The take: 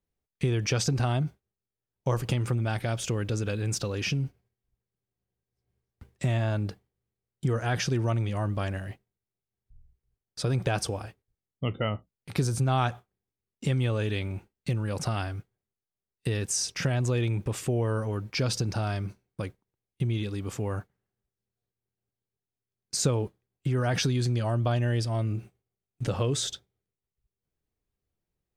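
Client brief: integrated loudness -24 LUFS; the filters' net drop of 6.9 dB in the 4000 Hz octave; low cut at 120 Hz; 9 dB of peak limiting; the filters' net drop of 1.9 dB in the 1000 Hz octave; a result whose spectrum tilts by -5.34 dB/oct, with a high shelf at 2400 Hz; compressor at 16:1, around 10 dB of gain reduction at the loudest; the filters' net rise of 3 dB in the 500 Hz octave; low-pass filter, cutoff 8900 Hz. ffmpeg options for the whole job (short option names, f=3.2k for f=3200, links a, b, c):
-af "highpass=120,lowpass=8.9k,equalizer=f=500:t=o:g=5,equalizer=f=1k:t=o:g=-4.5,highshelf=f=2.4k:g=-3.5,equalizer=f=4k:t=o:g=-5.5,acompressor=threshold=-31dB:ratio=16,volume=15.5dB,alimiter=limit=-12dB:level=0:latency=1"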